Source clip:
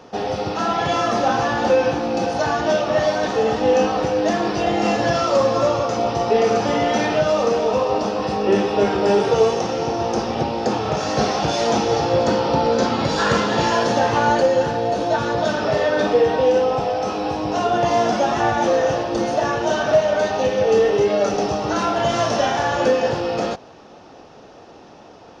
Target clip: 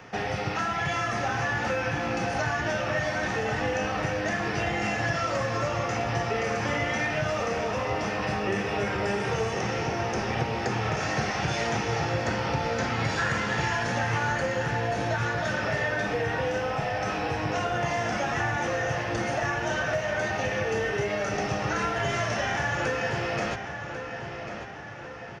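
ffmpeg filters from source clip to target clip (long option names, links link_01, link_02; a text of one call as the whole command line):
ffmpeg -i in.wav -filter_complex "[0:a]equalizer=frequency=125:width_type=o:width=1:gain=5,equalizer=frequency=250:width_type=o:width=1:gain=-6,equalizer=frequency=500:width_type=o:width=1:gain=-6,equalizer=frequency=1000:width_type=o:width=1:gain=-4,equalizer=frequency=2000:width_type=o:width=1:gain=11,equalizer=frequency=4000:width_type=o:width=1:gain=-7,acrossover=split=120|6400[link_01][link_02][link_03];[link_01]acompressor=threshold=-36dB:ratio=4[link_04];[link_02]acompressor=threshold=-27dB:ratio=4[link_05];[link_03]acompressor=threshold=-47dB:ratio=4[link_06];[link_04][link_05][link_06]amix=inputs=3:normalize=0,asplit=2[link_07][link_08];[link_08]adelay=1094,lowpass=frequency=4300:poles=1,volume=-8.5dB,asplit=2[link_09][link_10];[link_10]adelay=1094,lowpass=frequency=4300:poles=1,volume=0.53,asplit=2[link_11][link_12];[link_12]adelay=1094,lowpass=frequency=4300:poles=1,volume=0.53,asplit=2[link_13][link_14];[link_14]adelay=1094,lowpass=frequency=4300:poles=1,volume=0.53,asplit=2[link_15][link_16];[link_16]adelay=1094,lowpass=frequency=4300:poles=1,volume=0.53,asplit=2[link_17][link_18];[link_18]adelay=1094,lowpass=frequency=4300:poles=1,volume=0.53[link_19];[link_09][link_11][link_13][link_15][link_17][link_19]amix=inputs=6:normalize=0[link_20];[link_07][link_20]amix=inputs=2:normalize=0" out.wav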